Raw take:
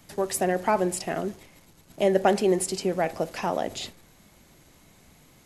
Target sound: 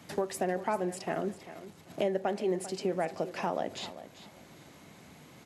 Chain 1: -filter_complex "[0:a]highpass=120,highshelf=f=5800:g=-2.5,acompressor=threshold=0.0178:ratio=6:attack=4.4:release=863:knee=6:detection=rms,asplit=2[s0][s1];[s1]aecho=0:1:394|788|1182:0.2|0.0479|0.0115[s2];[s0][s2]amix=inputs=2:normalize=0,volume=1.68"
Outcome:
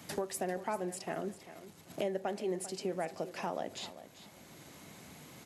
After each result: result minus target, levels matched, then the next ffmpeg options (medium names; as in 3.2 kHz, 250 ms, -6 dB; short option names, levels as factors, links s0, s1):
8 kHz band +5.5 dB; compression: peak gain reduction +5 dB
-filter_complex "[0:a]highpass=120,highshelf=f=5800:g=-10.5,acompressor=threshold=0.0178:ratio=6:attack=4.4:release=863:knee=6:detection=rms,asplit=2[s0][s1];[s1]aecho=0:1:394|788|1182:0.2|0.0479|0.0115[s2];[s0][s2]amix=inputs=2:normalize=0,volume=1.68"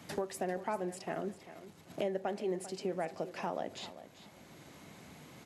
compression: peak gain reduction +5 dB
-filter_complex "[0:a]highpass=120,highshelf=f=5800:g=-10.5,acompressor=threshold=0.0355:ratio=6:attack=4.4:release=863:knee=6:detection=rms,asplit=2[s0][s1];[s1]aecho=0:1:394|788|1182:0.2|0.0479|0.0115[s2];[s0][s2]amix=inputs=2:normalize=0,volume=1.68"